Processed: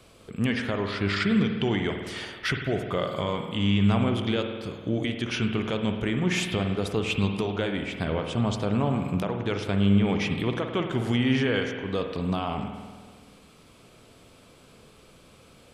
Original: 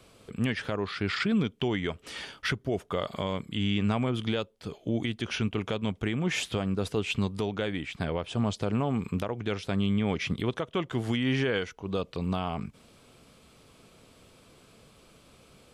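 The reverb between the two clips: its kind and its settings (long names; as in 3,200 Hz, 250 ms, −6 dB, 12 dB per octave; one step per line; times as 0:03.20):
spring reverb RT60 1.6 s, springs 50 ms, chirp 60 ms, DRR 4.5 dB
level +2 dB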